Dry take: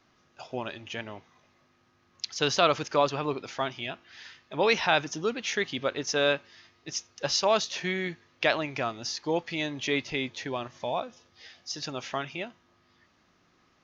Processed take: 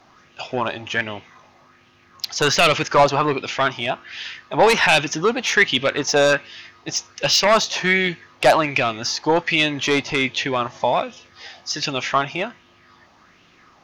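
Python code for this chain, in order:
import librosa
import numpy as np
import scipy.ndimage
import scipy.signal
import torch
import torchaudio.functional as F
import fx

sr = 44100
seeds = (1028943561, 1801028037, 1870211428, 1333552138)

p1 = fx.fold_sine(x, sr, drive_db=13, ceiling_db=-7.5)
p2 = x + F.gain(torch.from_numpy(p1), -10.0).numpy()
y = fx.bell_lfo(p2, sr, hz=1.3, low_hz=750.0, high_hz=3000.0, db=10)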